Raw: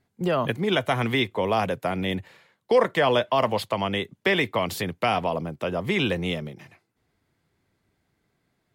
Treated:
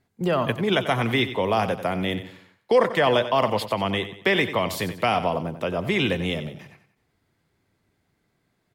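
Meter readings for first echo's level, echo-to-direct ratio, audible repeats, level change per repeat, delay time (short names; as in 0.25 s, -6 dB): -12.0 dB, -11.5 dB, 3, -8.0 dB, 92 ms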